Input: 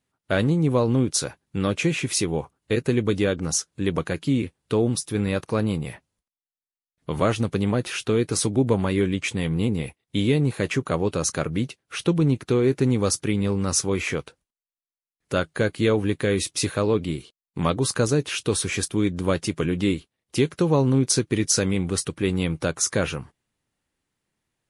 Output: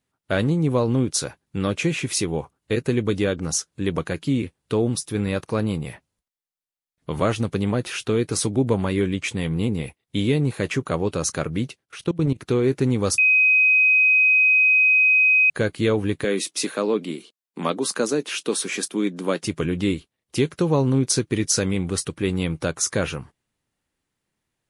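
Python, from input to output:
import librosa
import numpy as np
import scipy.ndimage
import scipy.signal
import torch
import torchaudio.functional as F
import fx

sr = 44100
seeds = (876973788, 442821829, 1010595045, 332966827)

y = fx.level_steps(x, sr, step_db=19, at=(11.84, 12.37), fade=0.02)
y = fx.steep_highpass(y, sr, hz=190.0, slope=36, at=(16.24, 19.43))
y = fx.edit(y, sr, fx.bleep(start_s=13.18, length_s=2.32, hz=2520.0, db=-13.0), tone=tone)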